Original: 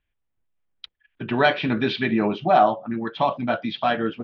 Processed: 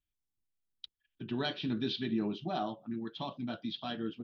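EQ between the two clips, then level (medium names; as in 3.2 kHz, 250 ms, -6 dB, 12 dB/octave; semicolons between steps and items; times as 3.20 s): bass shelf 500 Hz -5.5 dB; high-order bell 1.1 kHz -13 dB 2.7 oct; dynamic bell 2.2 kHz, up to -5 dB, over -54 dBFS, Q 4.6; -5.5 dB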